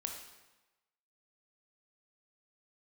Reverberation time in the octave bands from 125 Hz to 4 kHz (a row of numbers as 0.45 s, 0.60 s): 1.1 s, 1.0 s, 1.1 s, 1.1 s, 1.0 s, 0.95 s